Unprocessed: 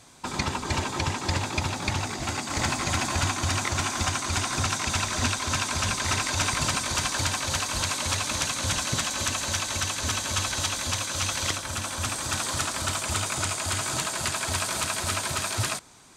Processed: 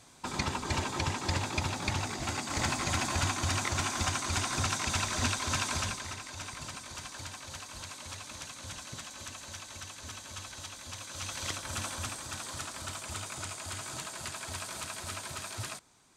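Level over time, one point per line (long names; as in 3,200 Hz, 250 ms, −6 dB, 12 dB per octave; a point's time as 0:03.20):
0:05.76 −4.5 dB
0:06.16 −16 dB
0:10.83 −16 dB
0:11.82 −4.5 dB
0:12.27 −11.5 dB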